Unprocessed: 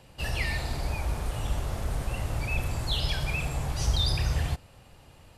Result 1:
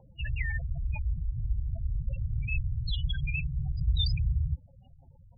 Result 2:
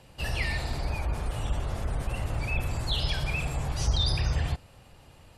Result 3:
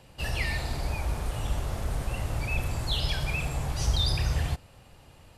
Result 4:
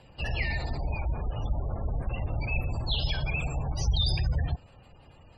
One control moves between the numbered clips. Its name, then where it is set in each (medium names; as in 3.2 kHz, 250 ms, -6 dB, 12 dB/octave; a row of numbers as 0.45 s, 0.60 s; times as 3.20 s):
spectral gate, under each frame's peak: -10 dB, -40 dB, -60 dB, -25 dB